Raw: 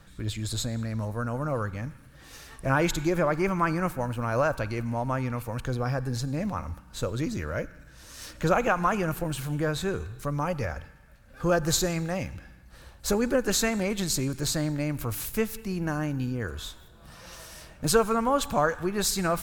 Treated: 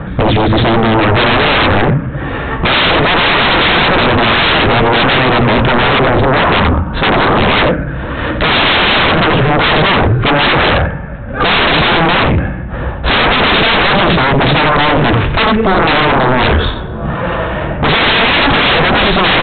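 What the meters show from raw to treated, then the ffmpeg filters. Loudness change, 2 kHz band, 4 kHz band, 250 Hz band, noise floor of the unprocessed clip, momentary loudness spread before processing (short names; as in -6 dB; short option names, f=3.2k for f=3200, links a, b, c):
+18.0 dB, +23.5 dB, +24.5 dB, +15.5 dB, -51 dBFS, 14 LU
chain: -filter_complex "[0:a]highpass=f=87:p=1,adynamicsmooth=sensitivity=2.5:basefreq=1.4k,flanger=delay=4.1:depth=6.9:regen=-81:speed=1:shape=triangular,asplit=2[a][b];[b]aecho=0:1:90:0.266[c];[a][c]amix=inputs=2:normalize=0,apsyclip=29.5dB,aresample=8000,aeval=exprs='1.26*sin(PI/2*5.62*val(0)/1.26)':c=same,aresample=44100,volume=-8.5dB"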